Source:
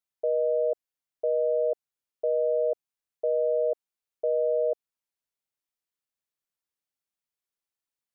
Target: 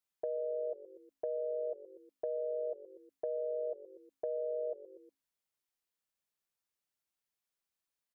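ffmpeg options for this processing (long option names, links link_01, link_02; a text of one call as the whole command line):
ffmpeg -i in.wav -filter_complex "[0:a]bandreject=frequency=60:width_type=h:width=6,bandreject=frequency=120:width_type=h:width=6,bandreject=frequency=180:width_type=h:width=6,bandreject=frequency=240:width_type=h:width=6,bandreject=frequency=300:width_type=h:width=6,bandreject=frequency=360:width_type=h:width=6,bandreject=frequency=420:width_type=h:width=6,asplit=4[link_01][link_02][link_03][link_04];[link_02]adelay=120,afreqshift=-48,volume=-19dB[link_05];[link_03]adelay=240,afreqshift=-96,volume=-26.5dB[link_06];[link_04]adelay=360,afreqshift=-144,volume=-34.1dB[link_07];[link_01][link_05][link_06][link_07]amix=inputs=4:normalize=0,acompressor=threshold=-40dB:ratio=2.5" out.wav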